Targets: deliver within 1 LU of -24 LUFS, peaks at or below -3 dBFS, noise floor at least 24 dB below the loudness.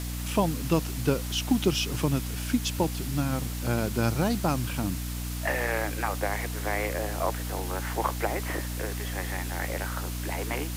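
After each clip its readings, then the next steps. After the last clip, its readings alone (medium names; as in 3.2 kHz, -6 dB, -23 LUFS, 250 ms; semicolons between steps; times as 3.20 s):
hum 60 Hz; highest harmonic 300 Hz; hum level -31 dBFS; noise floor -33 dBFS; noise floor target -53 dBFS; loudness -29.0 LUFS; peak level -11.0 dBFS; loudness target -24.0 LUFS
-> hum notches 60/120/180/240/300 Hz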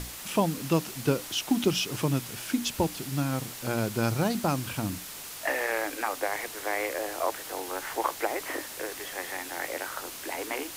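hum not found; noise floor -41 dBFS; noise floor target -55 dBFS
-> noise reduction 14 dB, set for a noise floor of -41 dBFS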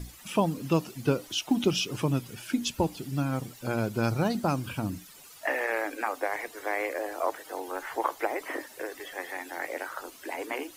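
noise floor -51 dBFS; noise floor target -55 dBFS
-> noise reduction 6 dB, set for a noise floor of -51 dBFS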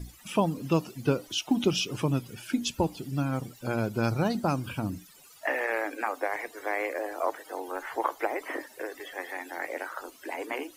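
noise floor -54 dBFS; noise floor target -55 dBFS
-> noise reduction 6 dB, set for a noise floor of -54 dBFS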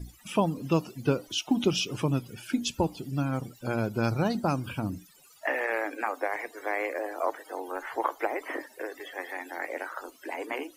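noise floor -57 dBFS; loudness -31.0 LUFS; peak level -12.5 dBFS; loudness target -24.0 LUFS
-> trim +7 dB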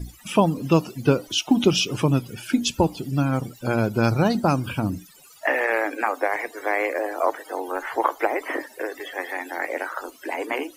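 loudness -24.0 LUFS; peak level -5.5 dBFS; noise floor -50 dBFS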